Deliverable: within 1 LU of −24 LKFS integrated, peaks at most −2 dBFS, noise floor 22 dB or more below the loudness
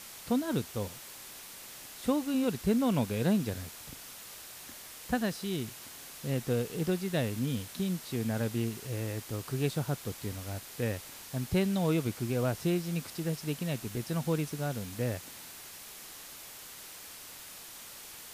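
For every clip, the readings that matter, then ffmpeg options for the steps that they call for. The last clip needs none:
background noise floor −48 dBFS; target noise floor −55 dBFS; integrated loudness −33.0 LKFS; sample peak −16.0 dBFS; target loudness −24.0 LKFS
→ -af "afftdn=noise_reduction=7:noise_floor=-48"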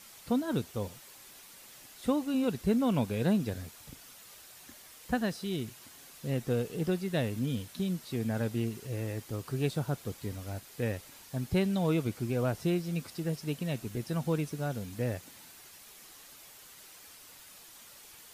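background noise floor −53 dBFS; target noise floor −55 dBFS
→ -af "afftdn=noise_reduction=6:noise_floor=-53"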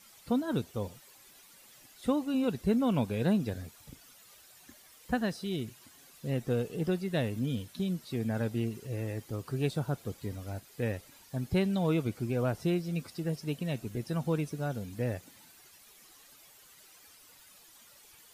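background noise floor −58 dBFS; integrated loudness −33.0 LKFS; sample peak −16.0 dBFS; target loudness −24.0 LKFS
→ -af "volume=9dB"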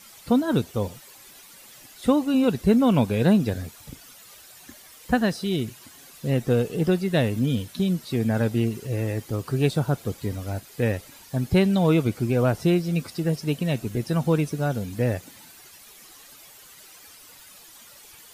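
integrated loudness −24.0 LKFS; sample peak −7.0 dBFS; background noise floor −49 dBFS

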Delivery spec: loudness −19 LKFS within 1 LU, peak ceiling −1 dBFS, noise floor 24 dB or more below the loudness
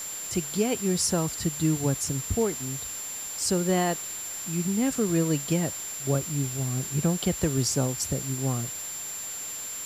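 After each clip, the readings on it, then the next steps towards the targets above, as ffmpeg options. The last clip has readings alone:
interfering tone 7,300 Hz; level of the tone −34 dBFS; background noise floor −36 dBFS; target noise floor −52 dBFS; integrated loudness −27.5 LKFS; sample peak −12.5 dBFS; target loudness −19.0 LKFS
→ -af "bandreject=frequency=7300:width=30"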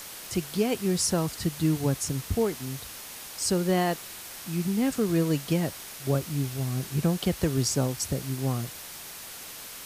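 interfering tone none found; background noise floor −42 dBFS; target noise floor −52 dBFS
→ -af "afftdn=noise_reduction=10:noise_floor=-42"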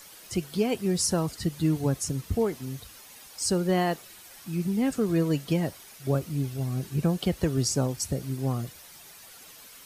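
background noise floor −49 dBFS; target noise floor −52 dBFS
→ -af "afftdn=noise_reduction=6:noise_floor=-49"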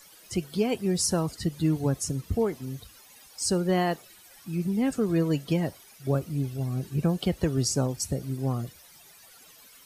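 background noise floor −53 dBFS; integrated loudness −28.0 LKFS; sample peak −13.5 dBFS; target loudness −19.0 LKFS
→ -af "volume=9dB"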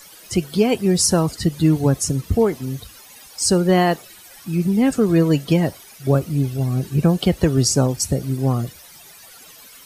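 integrated loudness −19.0 LKFS; sample peak −4.5 dBFS; background noise floor −44 dBFS

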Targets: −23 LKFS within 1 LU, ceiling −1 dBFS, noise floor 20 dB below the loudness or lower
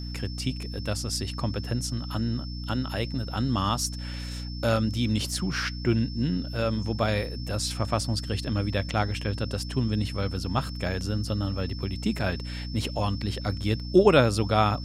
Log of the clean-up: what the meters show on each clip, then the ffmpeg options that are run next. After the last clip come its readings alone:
mains hum 60 Hz; hum harmonics up to 300 Hz; level of the hum −32 dBFS; interfering tone 5,300 Hz; level of the tone −42 dBFS; integrated loudness −27.5 LKFS; sample peak −5.5 dBFS; target loudness −23.0 LKFS
→ -af "bandreject=frequency=60:width_type=h:width=4,bandreject=frequency=120:width_type=h:width=4,bandreject=frequency=180:width_type=h:width=4,bandreject=frequency=240:width_type=h:width=4,bandreject=frequency=300:width_type=h:width=4"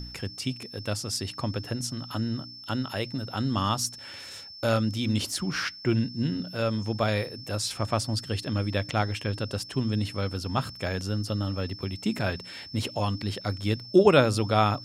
mains hum none found; interfering tone 5,300 Hz; level of the tone −42 dBFS
→ -af "bandreject=frequency=5300:width=30"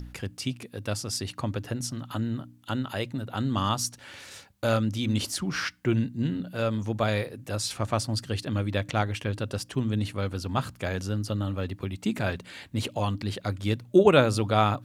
interfering tone none found; integrated loudness −28.5 LKFS; sample peak −5.5 dBFS; target loudness −23.0 LKFS
→ -af "volume=5.5dB,alimiter=limit=-1dB:level=0:latency=1"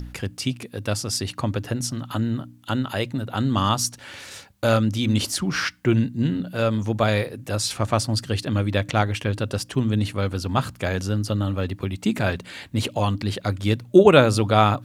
integrated loudness −23.0 LKFS; sample peak −1.0 dBFS; background noise floor −48 dBFS

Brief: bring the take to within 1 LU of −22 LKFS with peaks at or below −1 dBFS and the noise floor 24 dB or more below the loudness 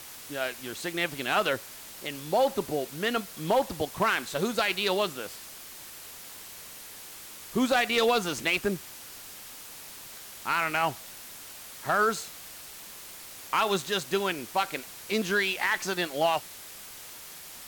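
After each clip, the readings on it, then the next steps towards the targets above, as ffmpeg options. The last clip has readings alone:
background noise floor −45 dBFS; target noise floor −52 dBFS; integrated loudness −28.0 LKFS; sample peak −15.0 dBFS; target loudness −22.0 LKFS
→ -af "afftdn=noise_reduction=7:noise_floor=-45"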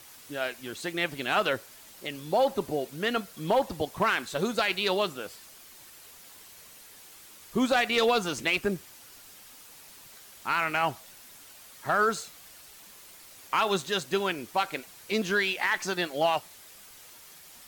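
background noise floor −51 dBFS; target noise floor −53 dBFS
→ -af "afftdn=noise_reduction=6:noise_floor=-51"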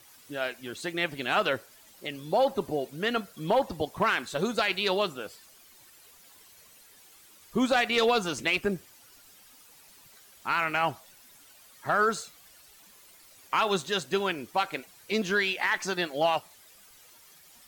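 background noise floor −56 dBFS; integrated loudness −28.5 LKFS; sample peak −15.0 dBFS; target loudness −22.0 LKFS
→ -af "volume=6.5dB"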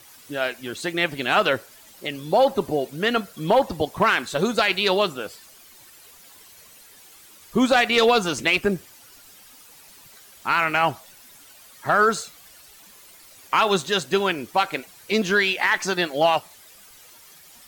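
integrated loudness −22.0 LKFS; sample peak −8.5 dBFS; background noise floor −49 dBFS

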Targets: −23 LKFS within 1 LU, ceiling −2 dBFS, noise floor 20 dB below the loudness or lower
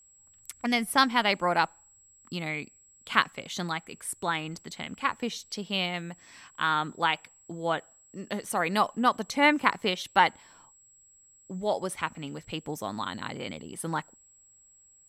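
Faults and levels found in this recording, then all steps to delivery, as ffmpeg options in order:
interfering tone 7,700 Hz; level of the tone −56 dBFS; integrated loudness −29.0 LKFS; sample peak −4.0 dBFS; target loudness −23.0 LKFS
→ -af "bandreject=frequency=7700:width=30"
-af "volume=6dB,alimiter=limit=-2dB:level=0:latency=1"

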